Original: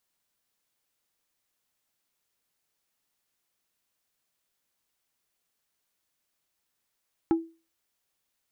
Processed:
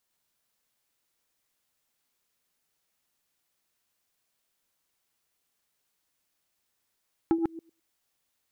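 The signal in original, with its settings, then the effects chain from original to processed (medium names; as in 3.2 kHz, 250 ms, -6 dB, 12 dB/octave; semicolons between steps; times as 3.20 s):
wood hit plate, lowest mode 329 Hz, decay 0.32 s, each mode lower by 10 dB, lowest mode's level -16.5 dB
chunks repeated in reverse 104 ms, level -3 dB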